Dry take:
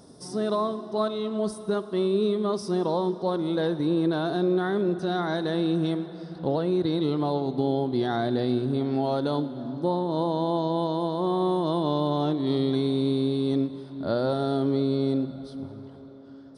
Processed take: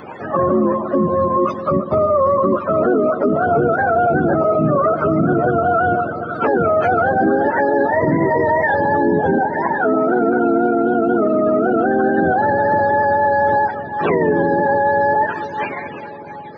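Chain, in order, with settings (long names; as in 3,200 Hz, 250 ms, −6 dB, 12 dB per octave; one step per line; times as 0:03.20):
frequency axis turned over on the octave scale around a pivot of 480 Hz
high-frequency loss of the air 180 metres
harmonic and percussive parts rebalanced harmonic −12 dB
high-shelf EQ 8,000 Hz +12 dB
boost into a limiter +33.5 dB
level −7 dB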